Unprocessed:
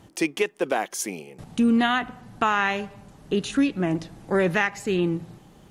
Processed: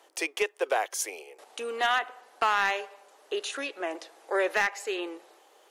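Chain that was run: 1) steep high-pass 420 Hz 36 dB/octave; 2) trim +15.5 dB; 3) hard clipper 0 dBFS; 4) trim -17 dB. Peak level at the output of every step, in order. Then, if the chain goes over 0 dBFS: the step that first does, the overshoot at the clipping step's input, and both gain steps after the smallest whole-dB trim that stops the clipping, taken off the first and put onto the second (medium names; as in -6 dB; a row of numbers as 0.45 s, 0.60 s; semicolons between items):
-9.5 dBFS, +6.0 dBFS, 0.0 dBFS, -17.0 dBFS; step 2, 6.0 dB; step 2 +9.5 dB, step 4 -11 dB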